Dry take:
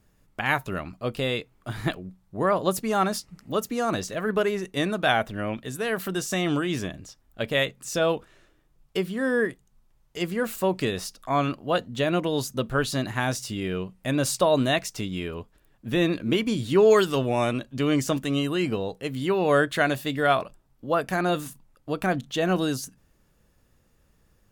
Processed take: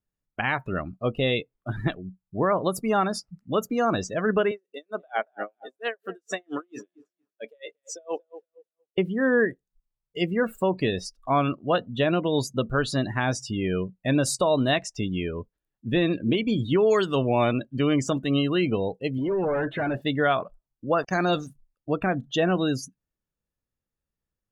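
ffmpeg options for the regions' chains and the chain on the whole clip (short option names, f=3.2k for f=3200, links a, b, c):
-filter_complex "[0:a]asettb=1/sr,asplit=3[a][b][c];[a]atrim=end=4.514[d];[b]atrim=start=4.51:end=8.98,asetpts=PTS-STARTPTS,afade=t=in:d=0.004:c=qsin,afade=t=out:st=4.466:d=0.004:c=qsin,highpass=400,asplit=2[e][f];[f]adelay=232,lowpass=f=2.2k:p=1,volume=-12dB,asplit=2[g][h];[h]adelay=232,lowpass=f=2.2k:p=1,volume=0.43,asplit=2[i][j];[j]adelay=232,lowpass=f=2.2k:p=1,volume=0.43,asplit=2[k][l];[l]adelay=232,lowpass=f=2.2k:p=1,volume=0.43[m];[e][g][i][k][m]amix=inputs=5:normalize=0,atrim=end_sample=197127,aeval=exprs='val(0)*pow(10,-31*(0.5-0.5*cos(2*PI*4.4*n/s))/20)':c=same[n];[c]atrim=start=8.976[o];[d][n]acrossfade=d=0.004:c1=hsin:c2=qsin[p];[p][o]acrossfade=d=0.004:c1=qsin:c2=hsin,asettb=1/sr,asplit=3[q][r][s];[q]atrim=end=19.184[t];[r]atrim=start=19.18:end=20.02,asetpts=PTS-STARTPTS,afade=t=in:d=0.004:c=qsin,afade=t=out:st=0.836:d=0.004:c=qsin,volume=25.5dB,asoftclip=hard,volume=-25.5dB,asplit=2[u][v];[v]highpass=f=720:p=1,volume=22dB,asoftclip=type=tanh:threshold=-22.5dB[w];[u][w]amix=inputs=2:normalize=0,lowpass=f=1k:p=1,volume=-6dB[x];[s]atrim=start=20.016[y];[t][x]acrossfade=d=0.004:c1=hsin:c2=qsin[z];[z][y]acrossfade=d=0.004:c1=qsin:c2=hsin,asettb=1/sr,asplit=3[aa][ab][ac];[aa]atrim=end=20.984[ad];[ab]atrim=start=20.98:end=21.47,asetpts=PTS-STARTPTS,afade=t=in:d=0.004:c=qsin,afade=t=out:st=0.486:d=0.004:c=qsin,lowpass=f=5.9k:t=q:w=3.5,aeval=exprs='val(0)*gte(abs(val(0)),0.0168)':c=same[ae];[ac]atrim=start=21.466[af];[ad][ae]acrossfade=d=0.004:c1=hsin:c2=qsin[ag];[ag][af]acrossfade=d=0.004:c1=qsin:c2=hsin,afftdn=nr=28:nf=-35,alimiter=limit=-15.5dB:level=0:latency=1:release=260,volume=3dB"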